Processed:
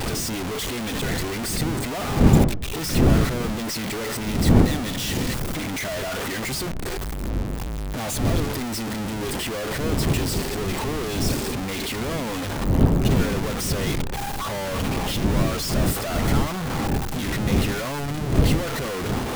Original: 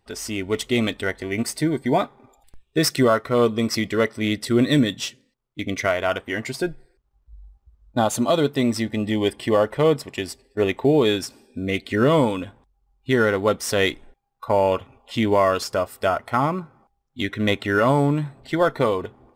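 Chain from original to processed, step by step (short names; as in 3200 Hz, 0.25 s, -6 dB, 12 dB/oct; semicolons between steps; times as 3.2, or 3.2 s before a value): infinite clipping; wind noise 220 Hz -19 dBFS; gain -5.5 dB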